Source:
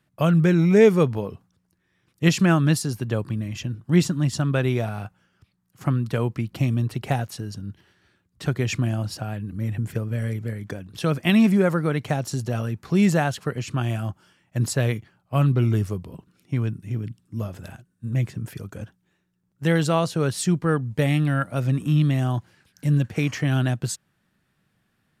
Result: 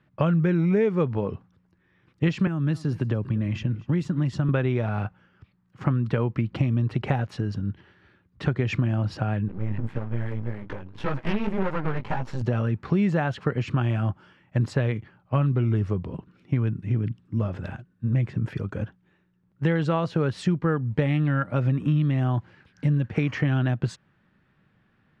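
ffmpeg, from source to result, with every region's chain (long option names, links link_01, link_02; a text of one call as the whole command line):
ffmpeg -i in.wav -filter_complex "[0:a]asettb=1/sr,asplit=3[link_01][link_02][link_03];[link_01]atrim=end=2.474[link_04];[link_02]atrim=start=2.47:end=4.49,asetpts=PTS-STARTPTS,afade=type=in:duration=0.004:curve=qsin,afade=type=out:start_time=2.016:duration=0.004:curve=qsin,acrossover=split=330|7400[link_05][link_06][link_07];[link_05]acompressor=threshold=-26dB:ratio=4[link_08];[link_06]acompressor=threshold=-38dB:ratio=4[link_09];[link_07]acompressor=threshold=-37dB:ratio=4[link_10];[link_08][link_09][link_10]amix=inputs=3:normalize=0,aecho=1:1:238:0.0841,atrim=end_sample=89082[link_11];[link_03]atrim=start=4.486[link_12];[link_04][link_11]acrossfade=duration=0.004:curve1=hsin:curve2=qsin[link_13];[link_13][link_12]acrossfade=duration=0.004:curve1=qsin:curve2=hsin,asettb=1/sr,asplit=3[link_14][link_15][link_16];[link_14]atrim=end=9.484[link_17];[link_15]atrim=start=9.48:end=12.42,asetpts=PTS-STARTPTS,afade=type=in:duration=0.004:curve=qsin,afade=type=out:start_time=2.936:duration=0.004:curve=qsin,equalizer=frequency=930:width_type=o:width=0.4:gain=12.5,flanger=delay=15:depth=5.5:speed=1.8,aeval=exprs='max(val(0),0)':channel_layout=same[link_18];[link_16]atrim=start=12.416[link_19];[link_17][link_18]acrossfade=duration=0.004:curve1=hsin:curve2=qsin[link_20];[link_20][link_19]acrossfade=duration=0.004:curve1=qsin:curve2=hsin,bandreject=frequency=690:width=12,acompressor=threshold=-25dB:ratio=6,lowpass=2500,volume=5.5dB" out.wav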